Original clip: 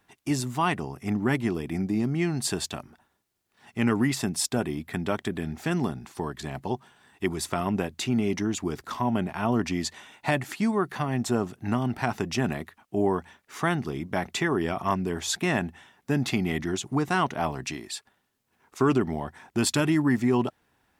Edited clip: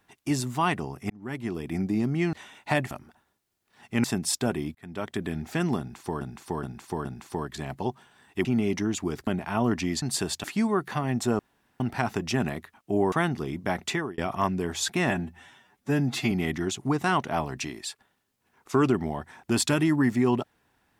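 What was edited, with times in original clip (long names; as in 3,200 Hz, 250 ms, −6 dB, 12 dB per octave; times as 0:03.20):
0:01.10–0:01.76: fade in
0:02.33–0:02.75: swap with 0:09.90–0:10.48
0:03.88–0:04.15: remove
0:04.86–0:05.34: fade in
0:05.90–0:06.32: repeat, 4 plays
0:07.30–0:08.05: remove
0:08.87–0:09.15: remove
0:11.43–0:11.84: fill with room tone
0:13.16–0:13.59: remove
0:14.37–0:14.65: fade out
0:15.57–0:16.38: time-stretch 1.5×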